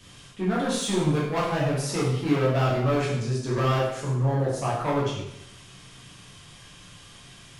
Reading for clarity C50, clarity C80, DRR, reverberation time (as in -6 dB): 2.0 dB, 5.0 dB, -7.0 dB, 0.80 s